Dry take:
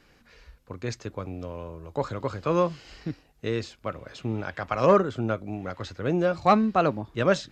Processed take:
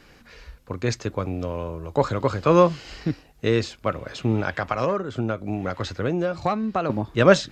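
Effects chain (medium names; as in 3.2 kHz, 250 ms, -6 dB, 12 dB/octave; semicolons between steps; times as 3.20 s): 4.56–6.90 s: compression 8:1, threshold -28 dBFS, peak gain reduction 14.5 dB; trim +7.5 dB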